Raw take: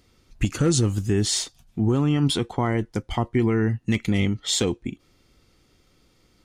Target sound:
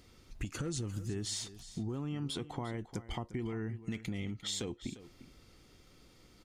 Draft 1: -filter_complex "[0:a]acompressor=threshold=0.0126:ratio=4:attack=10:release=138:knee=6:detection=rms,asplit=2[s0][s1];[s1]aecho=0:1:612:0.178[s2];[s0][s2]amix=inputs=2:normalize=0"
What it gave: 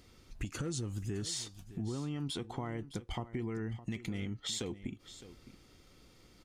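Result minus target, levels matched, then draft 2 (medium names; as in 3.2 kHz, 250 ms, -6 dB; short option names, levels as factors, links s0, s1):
echo 262 ms late
-filter_complex "[0:a]acompressor=threshold=0.0126:ratio=4:attack=10:release=138:knee=6:detection=rms,asplit=2[s0][s1];[s1]aecho=0:1:350:0.178[s2];[s0][s2]amix=inputs=2:normalize=0"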